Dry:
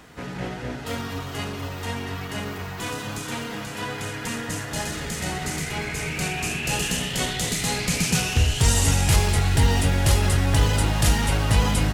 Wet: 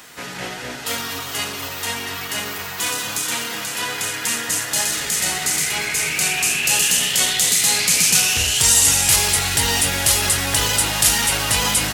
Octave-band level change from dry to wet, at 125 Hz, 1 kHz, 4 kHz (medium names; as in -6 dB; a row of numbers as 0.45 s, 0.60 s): -8.5 dB, +3.0 dB, +9.5 dB